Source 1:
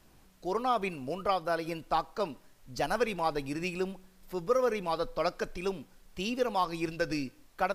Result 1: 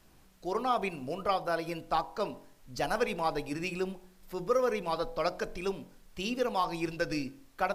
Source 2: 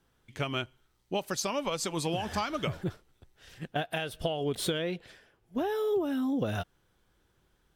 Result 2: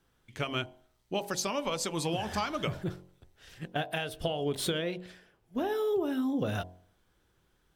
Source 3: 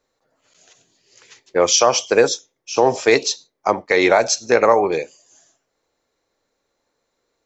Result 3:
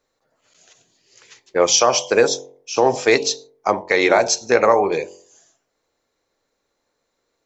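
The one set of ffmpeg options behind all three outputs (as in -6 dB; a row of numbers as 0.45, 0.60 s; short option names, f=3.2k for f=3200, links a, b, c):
-af "bandreject=f=45.32:t=h:w=4,bandreject=f=90.64:t=h:w=4,bandreject=f=135.96:t=h:w=4,bandreject=f=181.28:t=h:w=4,bandreject=f=226.6:t=h:w=4,bandreject=f=271.92:t=h:w=4,bandreject=f=317.24:t=h:w=4,bandreject=f=362.56:t=h:w=4,bandreject=f=407.88:t=h:w=4,bandreject=f=453.2:t=h:w=4,bandreject=f=498.52:t=h:w=4,bandreject=f=543.84:t=h:w=4,bandreject=f=589.16:t=h:w=4,bandreject=f=634.48:t=h:w=4,bandreject=f=679.8:t=h:w=4,bandreject=f=725.12:t=h:w=4,bandreject=f=770.44:t=h:w=4,bandreject=f=815.76:t=h:w=4,bandreject=f=861.08:t=h:w=4,bandreject=f=906.4:t=h:w=4,bandreject=f=951.72:t=h:w=4,bandreject=f=997.04:t=h:w=4,bandreject=f=1.04236k:t=h:w=4"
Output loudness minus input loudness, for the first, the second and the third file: -0.5, -0.5, -0.5 LU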